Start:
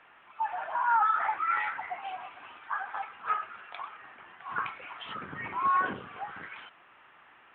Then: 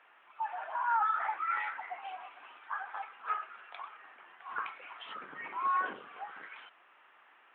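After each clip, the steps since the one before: HPF 350 Hz 12 dB/oct; gain -4.5 dB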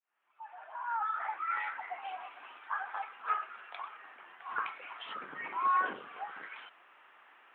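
opening faded in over 2.21 s; gain +2 dB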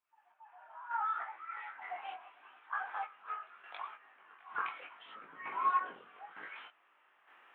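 reverse echo 0.274 s -17.5 dB; chopper 1.1 Hz, depth 60%, duty 35%; chorus 0.75 Hz, delay 18 ms, depth 4.2 ms; gain +1.5 dB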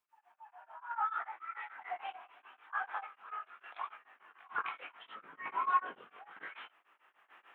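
beating tremolo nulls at 6.8 Hz; gain +3.5 dB

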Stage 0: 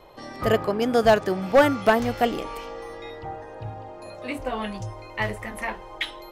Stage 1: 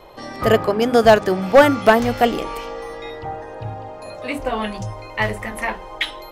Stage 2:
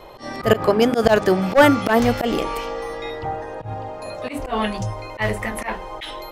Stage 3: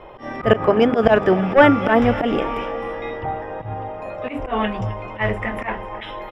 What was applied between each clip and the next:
notches 50/100/150/200/250/300/350 Hz; gain +6 dB
auto swell 0.102 s; gain +2.5 dB
polynomial smoothing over 25 samples; feedback echo 0.26 s, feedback 59%, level -16.5 dB; gain +1 dB

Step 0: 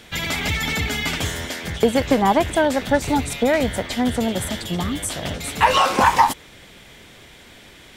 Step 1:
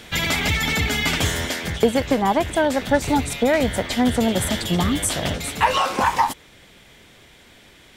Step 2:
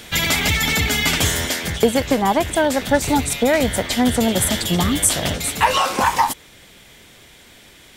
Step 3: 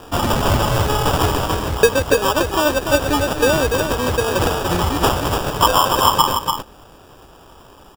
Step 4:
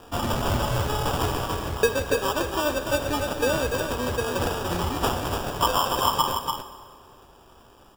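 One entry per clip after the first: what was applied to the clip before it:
vocal rider within 4 dB 0.5 s
high shelf 5600 Hz +8 dB; gain +1.5 dB
fixed phaser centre 1100 Hz, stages 8; sample-and-hold 21×; on a send: echo 0.291 s -5.5 dB; on the sum: gain +4 dB
reverb RT60 2.1 s, pre-delay 4 ms, DRR 9 dB; gain -8.5 dB

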